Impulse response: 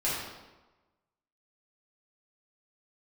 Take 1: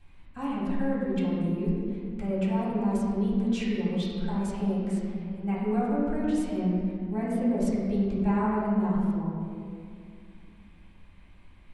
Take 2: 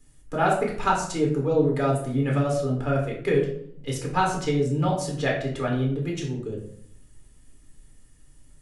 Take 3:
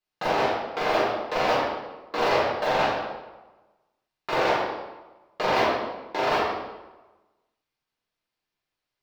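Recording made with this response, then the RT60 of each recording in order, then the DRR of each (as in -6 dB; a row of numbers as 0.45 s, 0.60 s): 3; 2.3 s, 0.65 s, 1.1 s; -10.0 dB, -2.0 dB, -9.0 dB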